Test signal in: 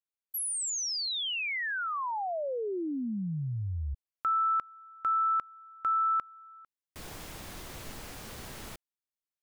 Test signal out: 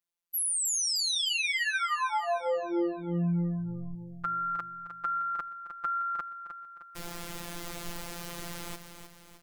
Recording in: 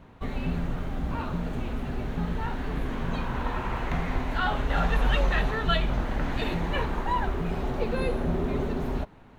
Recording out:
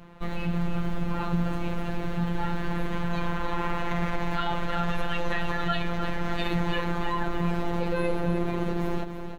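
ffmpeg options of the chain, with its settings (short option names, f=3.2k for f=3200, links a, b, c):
-af "alimiter=limit=-22dB:level=0:latency=1:release=35,aecho=1:1:308|616|924|1232|1540|1848:0.355|0.177|0.0887|0.0444|0.0222|0.0111,afftfilt=real='hypot(re,im)*cos(PI*b)':imag='0':win_size=1024:overlap=0.75,volume=6.5dB"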